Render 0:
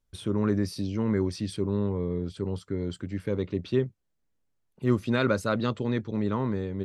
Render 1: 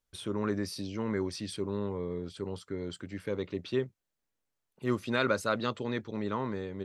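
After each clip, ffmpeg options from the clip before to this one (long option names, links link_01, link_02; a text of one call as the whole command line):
ffmpeg -i in.wav -af "lowshelf=frequency=310:gain=-11" out.wav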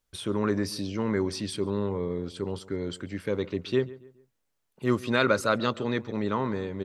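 ffmpeg -i in.wav -filter_complex "[0:a]asplit=2[link_01][link_02];[link_02]adelay=140,lowpass=frequency=2300:poles=1,volume=-18.5dB,asplit=2[link_03][link_04];[link_04]adelay=140,lowpass=frequency=2300:poles=1,volume=0.38,asplit=2[link_05][link_06];[link_06]adelay=140,lowpass=frequency=2300:poles=1,volume=0.38[link_07];[link_01][link_03][link_05][link_07]amix=inputs=4:normalize=0,volume=5dB" out.wav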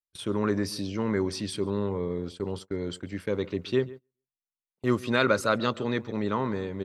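ffmpeg -i in.wav -af "agate=range=-29dB:threshold=-39dB:ratio=16:detection=peak" out.wav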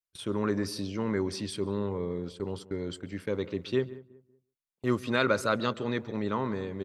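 ffmpeg -i in.wav -filter_complex "[0:a]asplit=2[link_01][link_02];[link_02]adelay=187,lowpass=frequency=1200:poles=1,volume=-18dB,asplit=2[link_03][link_04];[link_04]adelay=187,lowpass=frequency=1200:poles=1,volume=0.32,asplit=2[link_05][link_06];[link_06]adelay=187,lowpass=frequency=1200:poles=1,volume=0.32[link_07];[link_01][link_03][link_05][link_07]amix=inputs=4:normalize=0,volume=-2.5dB" out.wav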